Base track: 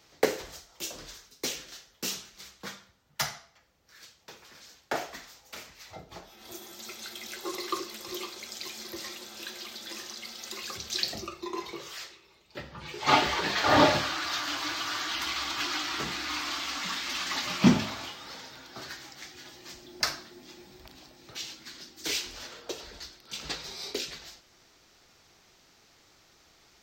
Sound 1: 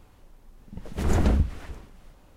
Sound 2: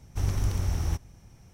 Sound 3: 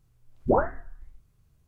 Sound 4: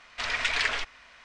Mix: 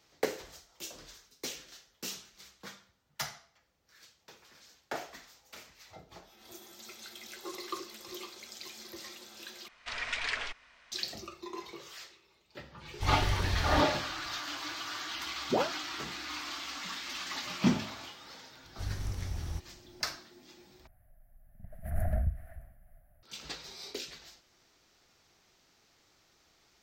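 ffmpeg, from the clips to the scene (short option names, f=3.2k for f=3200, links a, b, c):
-filter_complex "[2:a]asplit=2[a][b];[0:a]volume=-6.5dB[c];[3:a]highpass=f=130:w=0.5412,highpass=f=130:w=1.3066[d];[1:a]firequalizer=gain_entry='entry(120,0);entry(180,-7);entry(420,-28);entry(650,8);entry(930,-21);entry(1700,0);entry(2600,-17);entry(3600,-25);entry(6900,-24);entry(11000,6)':delay=0.05:min_phase=1[e];[c]asplit=3[f][g][h];[f]atrim=end=9.684[i];[4:a]atrim=end=1.24,asetpts=PTS-STARTPTS,volume=-7.5dB[j];[g]atrim=start=10.916:end=20.874[k];[e]atrim=end=2.36,asetpts=PTS-STARTPTS,volume=-8dB[l];[h]atrim=start=23.226[m];[a]atrim=end=1.53,asetpts=PTS-STARTPTS,volume=-4.5dB,afade=t=in:d=0.004:c=hsin,afade=t=out:st=1.526:d=0.004:c=hsin,adelay=12850[n];[d]atrim=end=1.67,asetpts=PTS-STARTPTS,volume=-7.5dB,afade=t=in:d=0.004:c=hsin,afade=t=out:st=1.666:d=0.004:c=hsin,adelay=15030[o];[b]atrim=end=1.53,asetpts=PTS-STARTPTS,volume=-9.5dB,afade=t=in:d=0.004:c=hsin,afade=t=out:st=1.526:d=0.004:c=hsin,adelay=18630[p];[i][j]acrossfade=d=0.004:c1=hsin:c2=hsin[q];[q][k]acrossfade=d=0.004:c1=hsin:c2=hsin[r];[r][l]acrossfade=d=0.004:c1=hsin:c2=hsin[s];[s][m]acrossfade=d=0.004:c1=hsin:c2=hsin[t];[t][n][o][p]amix=inputs=4:normalize=0"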